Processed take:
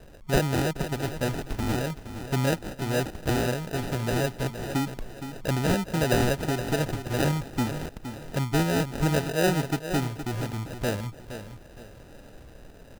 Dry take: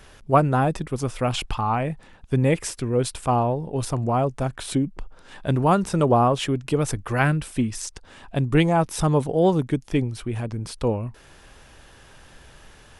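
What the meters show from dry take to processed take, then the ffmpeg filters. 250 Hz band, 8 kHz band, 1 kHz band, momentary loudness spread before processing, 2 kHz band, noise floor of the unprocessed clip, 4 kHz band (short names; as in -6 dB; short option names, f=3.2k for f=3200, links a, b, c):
-4.0 dB, -2.5 dB, -9.0 dB, 10 LU, 0.0 dB, -50 dBFS, 0.0 dB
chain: -filter_complex "[0:a]asplit=2[a][b];[b]acompressor=threshold=-33dB:ratio=6,volume=2.5dB[c];[a][c]amix=inputs=2:normalize=0,acrusher=samples=40:mix=1:aa=0.000001,aecho=1:1:467|934|1401:0.299|0.0955|0.0306,volume=-7dB"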